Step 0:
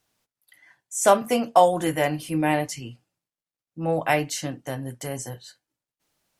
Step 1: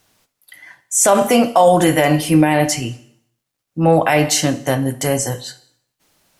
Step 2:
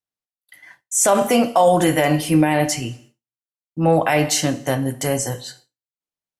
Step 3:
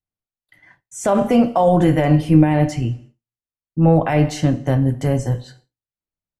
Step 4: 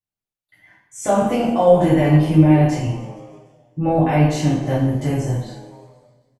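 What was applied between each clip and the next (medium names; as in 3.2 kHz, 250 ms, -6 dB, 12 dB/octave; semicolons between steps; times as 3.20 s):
plate-style reverb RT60 0.62 s, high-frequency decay 1×, DRR 12 dB; loudness maximiser +15.5 dB; trim -2 dB
expander -39 dBFS; trim -3 dB
RIAA curve playback; trim -3 dB
frequency-shifting echo 151 ms, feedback 60%, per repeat +95 Hz, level -19.5 dB; two-slope reverb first 0.57 s, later 2 s, from -21 dB, DRR -8 dB; trim -8.5 dB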